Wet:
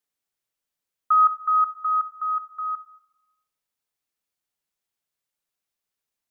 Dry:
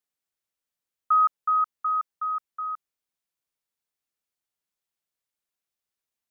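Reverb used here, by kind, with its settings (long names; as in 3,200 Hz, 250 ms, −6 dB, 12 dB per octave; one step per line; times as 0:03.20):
rectangular room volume 490 cubic metres, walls mixed, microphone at 0.32 metres
level +2 dB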